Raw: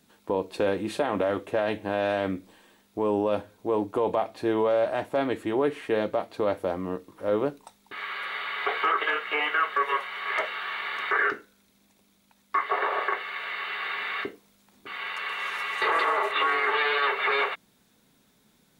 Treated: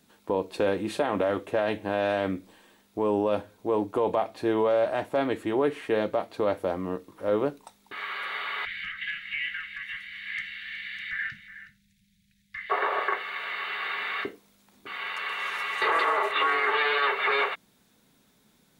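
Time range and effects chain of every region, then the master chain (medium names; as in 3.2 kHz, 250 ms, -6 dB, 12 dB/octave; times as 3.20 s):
8.65–12.70 s: Chebyshev band-stop 190–1800 Hz, order 4 + tilt EQ -2 dB/octave + delay 368 ms -14 dB
whole clip: none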